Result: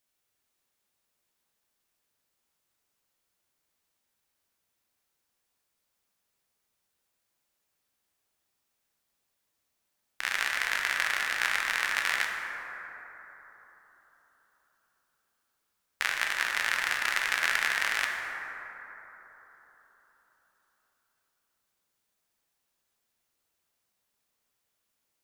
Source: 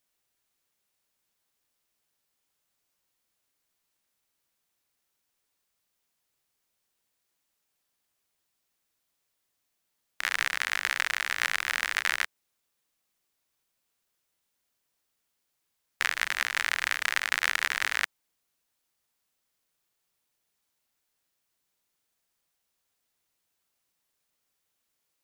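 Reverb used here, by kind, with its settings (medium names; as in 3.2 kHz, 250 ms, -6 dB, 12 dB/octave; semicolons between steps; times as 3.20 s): plate-style reverb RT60 4.2 s, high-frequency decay 0.3×, DRR 0.5 dB; trim -2 dB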